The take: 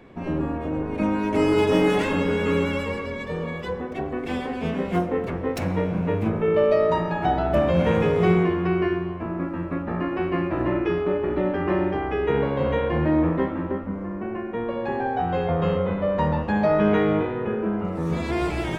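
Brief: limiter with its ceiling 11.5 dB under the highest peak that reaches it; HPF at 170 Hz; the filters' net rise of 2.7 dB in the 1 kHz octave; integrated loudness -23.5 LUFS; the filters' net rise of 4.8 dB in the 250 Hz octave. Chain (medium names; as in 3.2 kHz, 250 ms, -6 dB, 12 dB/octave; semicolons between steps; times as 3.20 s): high-pass 170 Hz; peaking EQ 250 Hz +8 dB; peaking EQ 1 kHz +3 dB; trim +0.5 dB; peak limiter -15 dBFS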